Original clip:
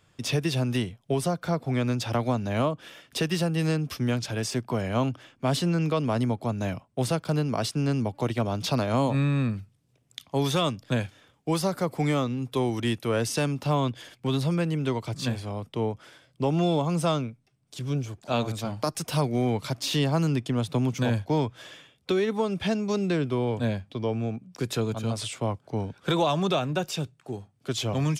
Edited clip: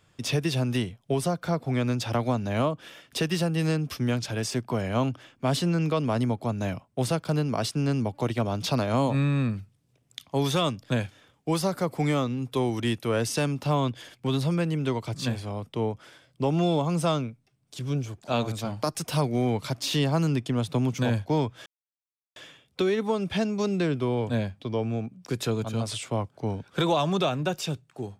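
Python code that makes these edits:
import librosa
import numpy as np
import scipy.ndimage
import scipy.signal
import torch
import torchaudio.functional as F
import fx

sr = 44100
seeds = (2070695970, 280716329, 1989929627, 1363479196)

y = fx.edit(x, sr, fx.insert_silence(at_s=21.66, length_s=0.7), tone=tone)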